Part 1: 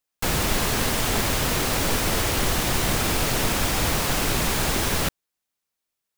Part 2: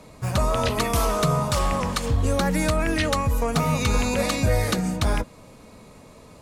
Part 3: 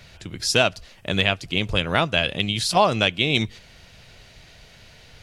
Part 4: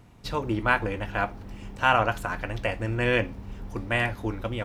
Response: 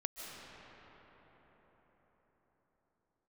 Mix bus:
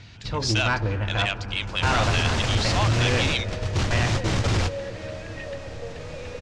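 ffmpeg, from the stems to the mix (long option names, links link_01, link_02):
-filter_complex "[0:a]alimiter=limit=-14dB:level=0:latency=1:release=190,adelay=1450,volume=1dB,asplit=2[link_01][link_02];[link_02]volume=-19.5dB[link_03];[1:a]asplit=3[link_04][link_05][link_06];[link_04]bandpass=frequency=530:width_type=q:width=8,volume=0dB[link_07];[link_05]bandpass=frequency=1840:width_type=q:width=8,volume=-6dB[link_08];[link_06]bandpass=frequency=2480:width_type=q:width=8,volume=-9dB[link_09];[link_07][link_08][link_09]amix=inputs=3:normalize=0,adelay=2400,volume=-6.5dB,asplit=2[link_10][link_11];[link_11]volume=-4dB[link_12];[2:a]highpass=1000,volume=-0.5dB[link_13];[3:a]volume=-1.5dB,asplit=3[link_14][link_15][link_16];[link_15]volume=-9.5dB[link_17];[link_16]apad=whole_len=336109[link_18];[link_01][link_18]sidechaingate=range=-33dB:threshold=-35dB:ratio=16:detection=peak[link_19];[4:a]atrim=start_sample=2205[link_20];[link_03][link_12][link_17]amix=inputs=3:normalize=0[link_21];[link_21][link_20]afir=irnorm=-1:irlink=0[link_22];[link_19][link_10][link_13][link_14][link_22]amix=inputs=5:normalize=0,equalizer=frequency=95:width=1.4:gain=11.5,asoftclip=type=tanh:threshold=-16dB,lowpass=frequency=6700:width=0.5412,lowpass=frequency=6700:width=1.3066"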